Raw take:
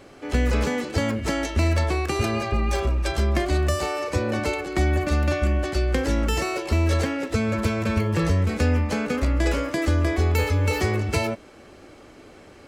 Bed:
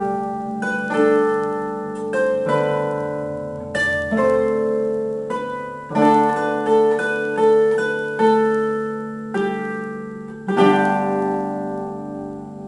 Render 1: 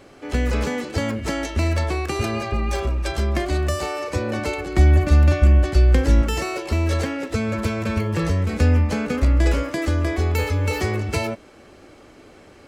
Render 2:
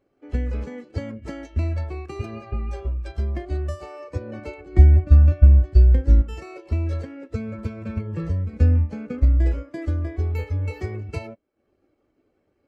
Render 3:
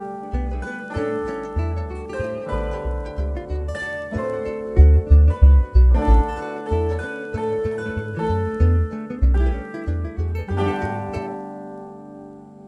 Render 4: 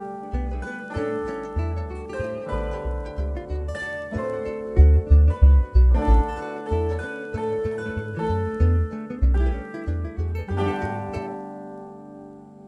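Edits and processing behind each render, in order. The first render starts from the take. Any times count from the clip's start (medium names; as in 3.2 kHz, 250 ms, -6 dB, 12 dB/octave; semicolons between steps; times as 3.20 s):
4.58–6.22 s: bass shelf 140 Hz +11.5 dB; 8.53–9.63 s: bass shelf 150 Hz +7 dB
transient shaper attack +3 dB, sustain -5 dB; spectral contrast expander 1.5:1
add bed -9 dB
trim -2.5 dB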